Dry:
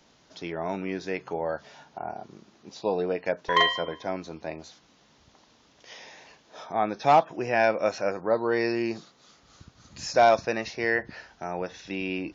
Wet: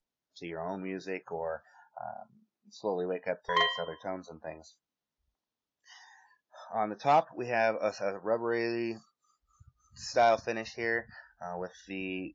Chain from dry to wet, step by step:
noise reduction from a noise print of the clip's start 27 dB
level −5.5 dB

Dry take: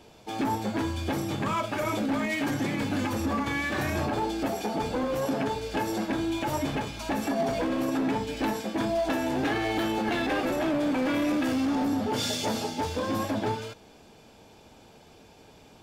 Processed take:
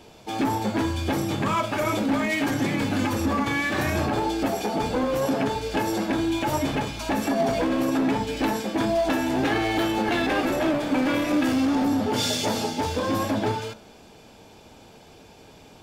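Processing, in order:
hum removal 73.27 Hz, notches 27
level +4.5 dB

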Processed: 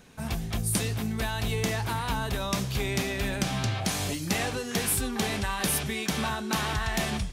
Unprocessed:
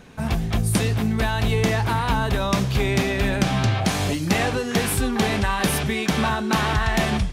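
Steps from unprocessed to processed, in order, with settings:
high-shelf EQ 4,400 Hz +10 dB
level −8.5 dB

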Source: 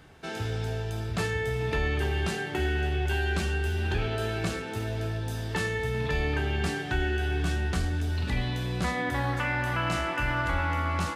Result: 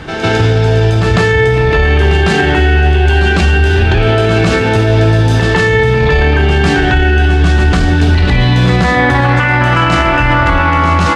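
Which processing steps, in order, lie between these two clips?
high-frequency loss of the air 81 metres
on a send: backwards echo 152 ms −8.5 dB
on the sum: boost into a limiter +26 dB
level −1 dB

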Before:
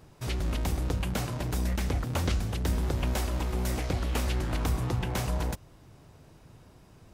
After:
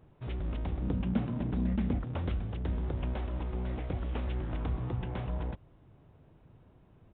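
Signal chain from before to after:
tilt shelving filter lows +4 dB, about 1,100 Hz
downsampling to 8,000 Hz
0:00.82–0:01.99: parametric band 220 Hz +14.5 dB 0.65 octaves
level −8.5 dB

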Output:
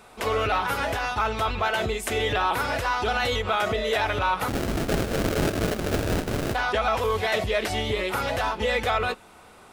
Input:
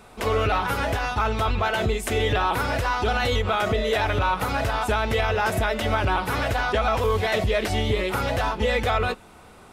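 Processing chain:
low-shelf EQ 280 Hz −7.5 dB
0:04.48–0:06.55: sample-rate reduction 1,000 Hz, jitter 20%

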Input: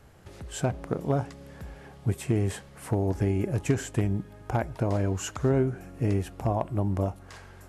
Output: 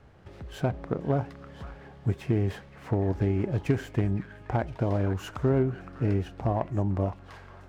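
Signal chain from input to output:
high-frequency loss of the air 140 metres
echo through a band-pass that steps 512 ms, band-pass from 1,500 Hz, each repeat 1.4 octaves, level −7.5 dB
windowed peak hold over 3 samples

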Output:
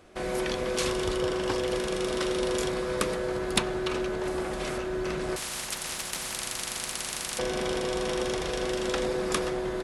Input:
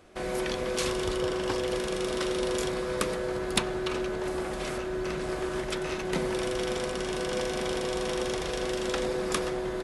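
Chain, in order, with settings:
0:05.36–0:07.39: every bin compressed towards the loudest bin 10 to 1
level +1 dB

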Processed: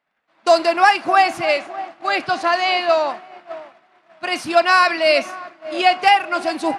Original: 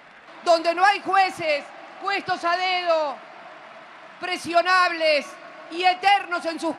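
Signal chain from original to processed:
feedback echo with a band-pass in the loop 603 ms, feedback 48%, band-pass 430 Hz, level −12 dB
downward expander −29 dBFS
level +4.5 dB

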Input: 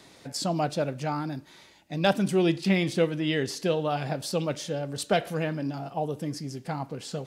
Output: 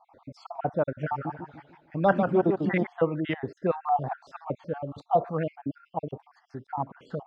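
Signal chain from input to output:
time-frequency cells dropped at random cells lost 50%
auto-filter low-pass saw up 1.8 Hz 770–1,700 Hz
0:00.86–0:02.87: feedback echo with a swinging delay time 151 ms, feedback 38%, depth 179 cents, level −6 dB

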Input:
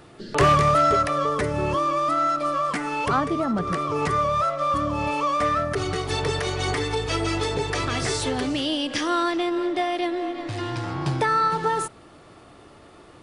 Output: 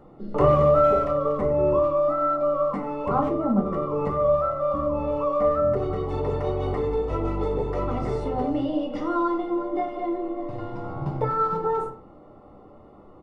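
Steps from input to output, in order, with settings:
Savitzky-Golay smoothing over 65 samples
comb filter 3.8 ms, depth 34%
far-end echo of a speakerphone 90 ms, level −11 dB
rectangular room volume 150 cubic metres, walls furnished, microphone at 1.2 metres
level −2.5 dB

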